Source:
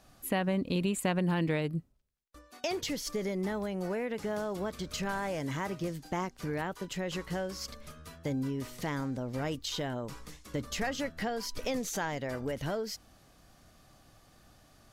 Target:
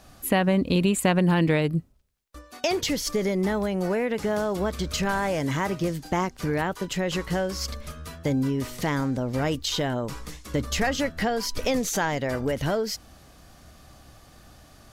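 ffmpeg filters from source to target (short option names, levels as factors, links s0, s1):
-af "equalizer=f=68:w=6.2:g=10,volume=2.66"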